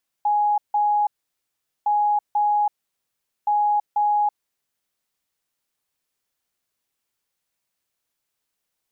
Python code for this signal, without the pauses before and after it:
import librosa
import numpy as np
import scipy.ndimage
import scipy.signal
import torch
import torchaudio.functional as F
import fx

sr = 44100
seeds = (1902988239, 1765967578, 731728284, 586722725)

y = fx.beep_pattern(sr, wave='sine', hz=832.0, on_s=0.33, off_s=0.16, beeps=2, pause_s=0.79, groups=3, level_db=-16.5)